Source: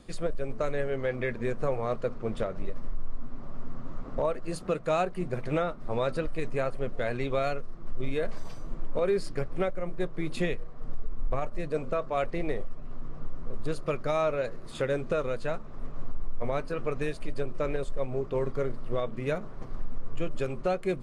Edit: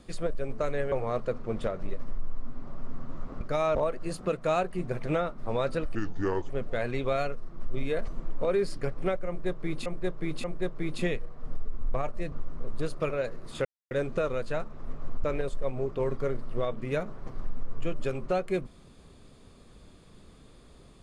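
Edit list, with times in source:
0.92–1.68 s: delete
6.37–6.76 s: speed 71%
8.34–8.62 s: delete
9.82–10.40 s: loop, 3 plays
11.70–13.18 s: delete
13.96–14.30 s: move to 4.17 s
14.85 s: insert silence 0.26 s
16.18–17.59 s: delete

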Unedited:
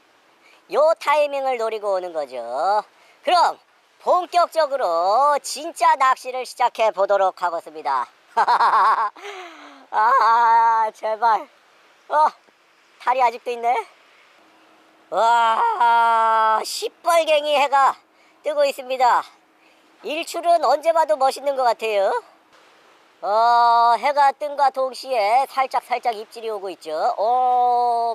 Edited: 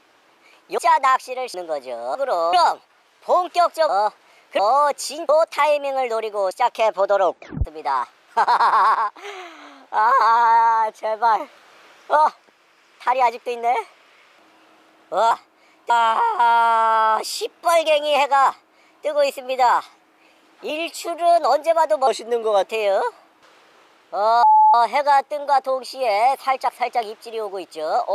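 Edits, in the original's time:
0.78–2.00 s: swap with 5.75–6.51 s
2.61–3.31 s: swap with 4.67–5.05 s
7.22 s: tape stop 0.43 s
11.40–12.16 s: gain +5 dB
17.88–18.47 s: copy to 15.31 s
20.11–20.55 s: stretch 1.5×
21.26–21.73 s: speed 84%
23.53–23.84 s: bleep 862 Hz -9 dBFS

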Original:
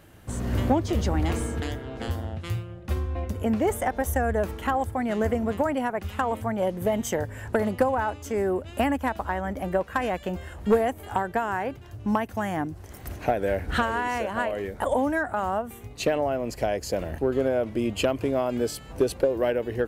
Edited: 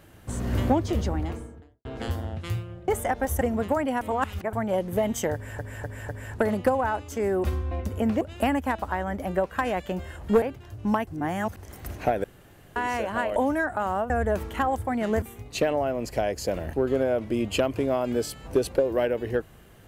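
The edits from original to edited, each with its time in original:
0.75–1.85 s: studio fade out
2.88–3.65 s: move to 8.58 s
4.18–5.30 s: move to 15.67 s
5.90–6.42 s: reverse
7.23–7.48 s: loop, 4 plays
10.79–11.63 s: delete
12.28–12.78 s: reverse
13.45–13.97 s: room tone
14.57–14.93 s: delete

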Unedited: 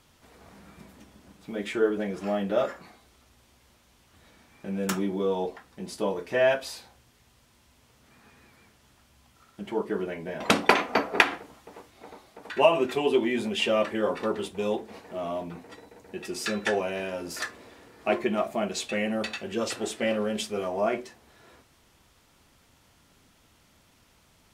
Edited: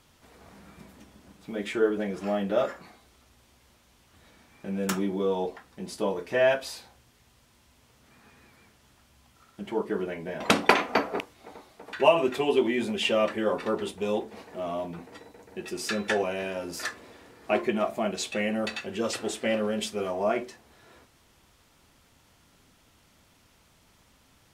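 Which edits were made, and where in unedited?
11.20–11.77 s: delete

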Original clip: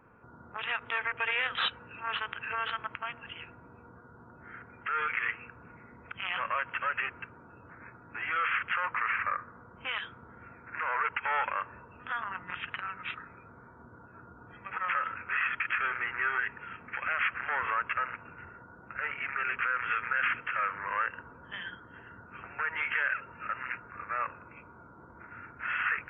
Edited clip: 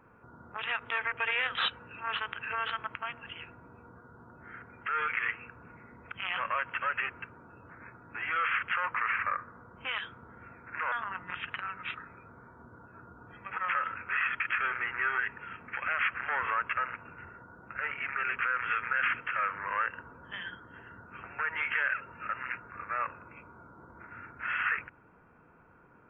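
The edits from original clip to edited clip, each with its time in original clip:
10.92–12.12 s: delete

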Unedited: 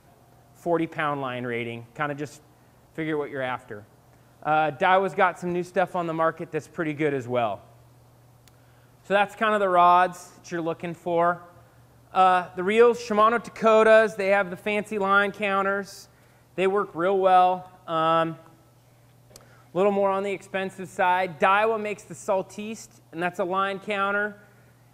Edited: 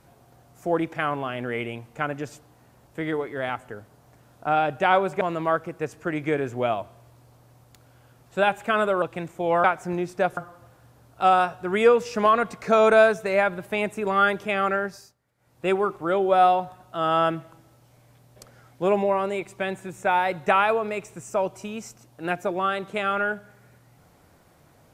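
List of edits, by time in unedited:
5.21–5.94 s: move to 11.31 s
9.75–10.69 s: delete
15.80–16.60 s: dip -19 dB, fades 0.29 s

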